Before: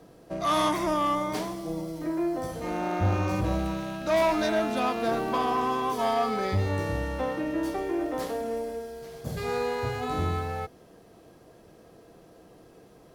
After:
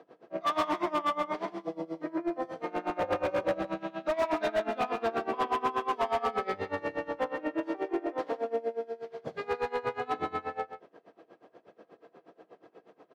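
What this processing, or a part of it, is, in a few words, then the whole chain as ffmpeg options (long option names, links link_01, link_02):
helicopter radio: -filter_complex "[0:a]asettb=1/sr,asplit=3[link_01][link_02][link_03];[link_01]atrim=end=2.974[link_04];[link_02]atrim=start=2.97:end=3.59,asetpts=PTS-STARTPTS,afade=type=in:duration=0.004:curve=qsin,afade=type=out:start_time=0.616:duration=0.004:curve=qsin,equalizer=frequency=540:width_type=o:width=0.28:gain=14.5[link_05];[link_03]atrim=start=3.586[link_06];[link_04][link_05]acrossfade=duration=0.004:curve1=hsin:curve2=qsin[link_07];[link_07][link_06]acrossfade=duration=0.004:curve1=qsin:curve2=hsin,highpass=340,lowpass=2500,aeval=exprs='val(0)*pow(10,-23*(0.5-0.5*cos(2*PI*8.3*n/s))/20)':channel_layout=same,asoftclip=type=hard:threshold=-28dB,aecho=1:1:135:0.316,volume=4.5dB"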